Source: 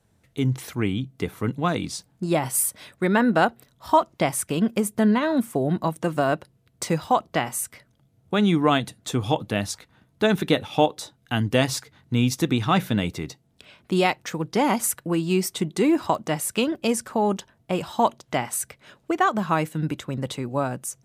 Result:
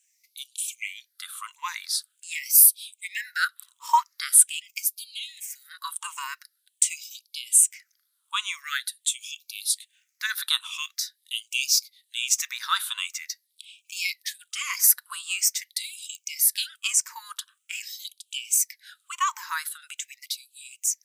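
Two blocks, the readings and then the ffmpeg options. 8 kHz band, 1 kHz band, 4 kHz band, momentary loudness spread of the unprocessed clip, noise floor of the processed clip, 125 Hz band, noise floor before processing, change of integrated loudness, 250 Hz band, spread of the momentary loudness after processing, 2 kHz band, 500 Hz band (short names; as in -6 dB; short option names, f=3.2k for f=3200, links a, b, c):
+9.0 dB, -7.0 dB, +3.5 dB, 9 LU, -74 dBFS, under -40 dB, -64 dBFS, 0.0 dB, under -40 dB, 19 LU, -1.5 dB, under -40 dB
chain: -af "afftfilt=real='re*pow(10,13/40*sin(2*PI*(0.69*log(max(b,1)*sr/1024/100)/log(2)-(-1.3)*(pts-256)/sr)))':imag='im*pow(10,13/40*sin(2*PI*(0.69*log(max(b,1)*sr/1024/100)/log(2)-(-1.3)*(pts-256)/sr)))':win_size=1024:overlap=0.75,bass=f=250:g=-11,treble=f=4k:g=12,bandreject=f=60:t=h:w=6,bandreject=f=120:t=h:w=6,bandreject=f=180:t=h:w=6,bandreject=f=240:t=h:w=6,bandreject=f=300:t=h:w=6,bandreject=f=360:t=h:w=6,bandreject=f=420:t=h:w=6,bandreject=f=480:t=h:w=6,bandreject=f=540:t=h:w=6,aeval=exprs='val(0)+0.00501*(sin(2*PI*50*n/s)+sin(2*PI*2*50*n/s)/2+sin(2*PI*3*50*n/s)/3+sin(2*PI*4*50*n/s)/4+sin(2*PI*5*50*n/s)/5)':c=same,afftfilt=real='re*gte(b*sr/1024,890*pow(2300/890,0.5+0.5*sin(2*PI*0.45*pts/sr)))':imag='im*gte(b*sr/1024,890*pow(2300/890,0.5+0.5*sin(2*PI*0.45*pts/sr)))':win_size=1024:overlap=0.75,volume=-3.5dB"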